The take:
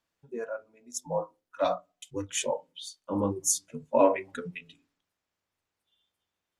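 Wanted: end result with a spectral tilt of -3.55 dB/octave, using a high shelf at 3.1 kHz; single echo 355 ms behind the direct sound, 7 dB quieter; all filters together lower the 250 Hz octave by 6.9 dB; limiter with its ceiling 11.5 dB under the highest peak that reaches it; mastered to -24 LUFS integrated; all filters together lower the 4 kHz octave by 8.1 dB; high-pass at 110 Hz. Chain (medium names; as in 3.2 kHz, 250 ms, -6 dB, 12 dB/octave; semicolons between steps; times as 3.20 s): high-pass 110 Hz; peaking EQ 250 Hz -8.5 dB; treble shelf 3.1 kHz -6 dB; peaking EQ 4 kHz -6.5 dB; peak limiter -22.5 dBFS; delay 355 ms -7 dB; trim +13 dB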